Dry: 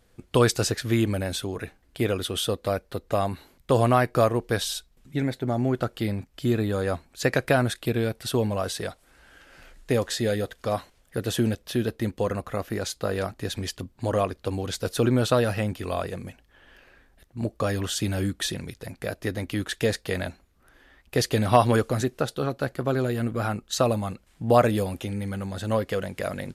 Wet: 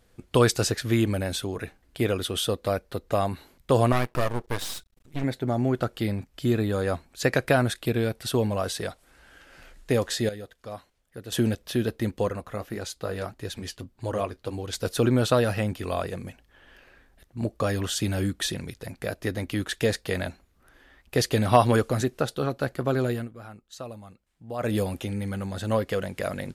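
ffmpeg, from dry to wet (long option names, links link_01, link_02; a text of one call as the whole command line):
ffmpeg -i in.wav -filter_complex "[0:a]asettb=1/sr,asplit=3[link_01][link_02][link_03];[link_01]atrim=end=3.924[link_04];[link_02]atrim=start=3.92:end=5.24,asetpts=PTS-STARTPTS,afade=type=in:duration=0.004:curve=qsin,afade=type=out:start_time=1.316:duration=0.004:curve=qsin,aeval=exprs='max(val(0),0)':channel_layout=same[link_05];[link_03]atrim=start=5.236[link_06];[link_04][link_05]acrossfade=duration=0.004:curve1=hsin:curve2=qsin[link_07];[link_07][link_06]acrossfade=duration=0.004:curve1=qsin:curve2=hsin,asettb=1/sr,asplit=3[link_08][link_09][link_10];[link_08]atrim=end=12.294[link_11];[link_09]atrim=start=12.29:end=14.73,asetpts=PTS-STARTPTS,afade=type=in:duration=0.004:curve=qsin,afade=type=out:start_time=2.436:duration=0.004:curve=qsin,flanger=delay=2:depth=7.2:regen=-51:speed=1.7:shape=sinusoidal[link_12];[link_10]atrim=start=14.726[link_13];[link_11][link_12]acrossfade=duration=0.004:curve1=hsin:curve2=qsin[link_14];[link_14][link_13]acrossfade=duration=0.004:curve1=qsin:curve2=hsin,asplit=5[link_15][link_16][link_17][link_18][link_19];[link_15]atrim=end=10.292[link_20];[link_16]atrim=start=10.288:end=11.322,asetpts=PTS-STARTPTS,volume=-11.5dB[link_21];[link_17]atrim=start=11.318:end=23.29,asetpts=PTS-STARTPTS,afade=type=out:start_time=11.802:duration=0.17:silence=0.158489[link_22];[link_18]atrim=start=23.29:end=24.58,asetpts=PTS-STARTPTS,volume=-16dB[link_23];[link_19]atrim=start=24.58,asetpts=PTS-STARTPTS,afade=type=in:duration=0.17:silence=0.158489[link_24];[link_20][link_21]acrossfade=duration=0.004:curve1=hsin:curve2=hsin[link_25];[link_22][link_23][link_24]concat=n=3:v=0:a=1[link_26];[link_25][link_26]acrossfade=duration=0.004:curve1=hsin:curve2=hsin" out.wav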